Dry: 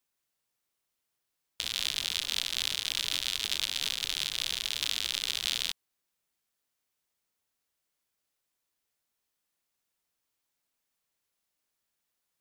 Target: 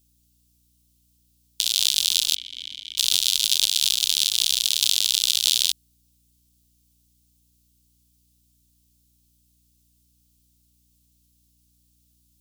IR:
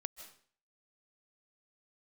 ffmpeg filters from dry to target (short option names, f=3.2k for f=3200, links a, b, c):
-filter_complex "[0:a]asplit=3[a][b][c];[a]afade=t=out:st=2.34:d=0.02[d];[b]asplit=3[e][f][g];[e]bandpass=f=270:t=q:w=8,volume=0dB[h];[f]bandpass=f=2.29k:t=q:w=8,volume=-6dB[i];[g]bandpass=f=3.01k:t=q:w=8,volume=-9dB[j];[h][i][j]amix=inputs=3:normalize=0,afade=t=in:st=2.34:d=0.02,afade=t=out:st=2.97:d=0.02[k];[c]afade=t=in:st=2.97:d=0.02[l];[d][k][l]amix=inputs=3:normalize=0,aeval=exprs='val(0)+0.001*(sin(2*PI*60*n/s)+sin(2*PI*2*60*n/s)/2+sin(2*PI*3*60*n/s)/3+sin(2*PI*4*60*n/s)/4+sin(2*PI*5*60*n/s)/5)':c=same,aexciter=amount=8:drive=5:freq=2.8k,volume=-5.5dB"